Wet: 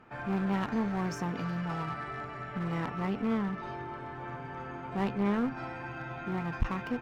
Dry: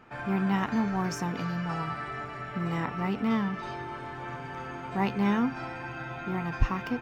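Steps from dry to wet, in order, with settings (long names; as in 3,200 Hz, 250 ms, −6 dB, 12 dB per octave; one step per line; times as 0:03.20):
high-shelf EQ 3,200 Hz −6.5 dB, from 0:03.26 −12 dB, from 0:05.58 −6.5 dB
asymmetric clip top −30 dBFS
level −1.5 dB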